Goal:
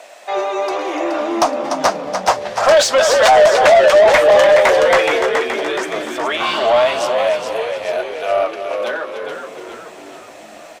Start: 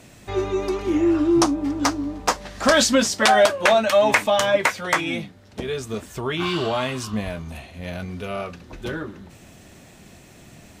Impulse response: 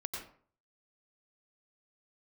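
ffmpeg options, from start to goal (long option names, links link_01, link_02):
-filter_complex "[0:a]highpass=frequency=630:width_type=q:width=4.3,asplit=2[link_01][link_02];[link_02]aecho=0:1:295:0.282[link_03];[link_01][link_03]amix=inputs=2:normalize=0,asoftclip=type=tanh:threshold=-5.5dB,asplit=2[link_04][link_05];[link_05]asplit=7[link_06][link_07][link_08][link_09][link_10][link_11][link_12];[link_06]adelay=423,afreqshift=-75,volume=-7dB[link_13];[link_07]adelay=846,afreqshift=-150,volume=-12.4dB[link_14];[link_08]adelay=1269,afreqshift=-225,volume=-17.7dB[link_15];[link_09]adelay=1692,afreqshift=-300,volume=-23.1dB[link_16];[link_10]adelay=2115,afreqshift=-375,volume=-28.4dB[link_17];[link_11]adelay=2538,afreqshift=-450,volume=-33.8dB[link_18];[link_12]adelay=2961,afreqshift=-525,volume=-39.1dB[link_19];[link_13][link_14][link_15][link_16][link_17][link_18][link_19]amix=inputs=7:normalize=0[link_20];[link_04][link_20]amix=inputs=2:normalize=0,asplit=2[link_21][link_22];[link_22]highpass=frequency=720:poles=1,volume=15dB,asoftclip=type=tanh:threshold=-1.5dB[link_23];[link_21][link_23]amix=inputs=2:normalize=0,lowpass=frequency=4800:poles=1,volume=-6dB,volume=-1.5dB"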